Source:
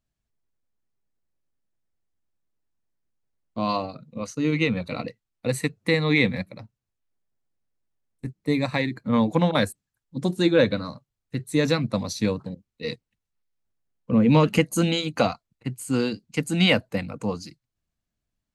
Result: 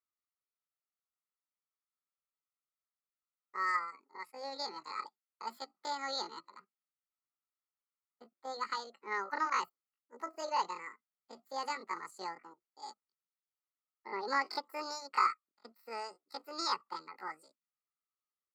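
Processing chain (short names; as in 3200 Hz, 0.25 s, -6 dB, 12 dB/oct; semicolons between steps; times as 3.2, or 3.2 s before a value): vowel filter a; pitch shift +10 st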